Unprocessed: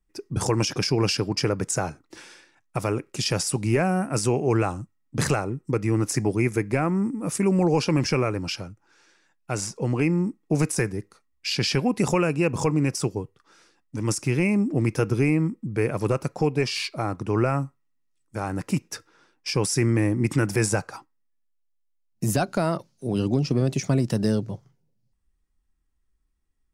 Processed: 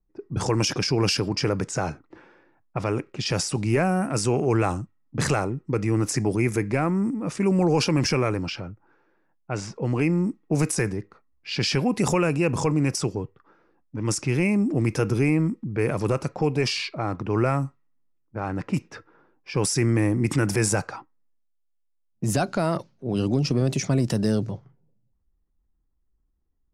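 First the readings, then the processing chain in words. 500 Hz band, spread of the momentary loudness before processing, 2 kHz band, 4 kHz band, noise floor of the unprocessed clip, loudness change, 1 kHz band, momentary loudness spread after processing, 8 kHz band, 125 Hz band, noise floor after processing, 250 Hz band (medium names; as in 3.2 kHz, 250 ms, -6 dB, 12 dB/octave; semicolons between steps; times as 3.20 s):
0.0 dB, 10 LU, +0.5 dB, +0.5 dB, -70 dBFS, 0.0 dB, +0.5 dB, 11 LU, 0.0 dB, 0.0 dB, -70 dBFS, 0.0 dB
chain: transient shaper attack -1 dB, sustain +5 dB; level-controlled noise filter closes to 870 Hz, open at -19 dBFS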